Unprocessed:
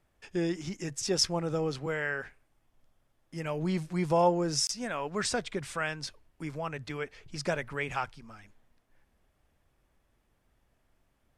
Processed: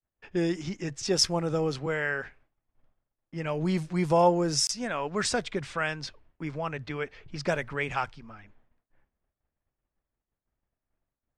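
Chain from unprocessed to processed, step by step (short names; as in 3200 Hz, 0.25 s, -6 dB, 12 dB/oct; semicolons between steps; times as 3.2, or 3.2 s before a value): expander -58 dBFS; low-pass opened by the level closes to 2200 Hz, open at -25.5 dBFS; gain +3 dB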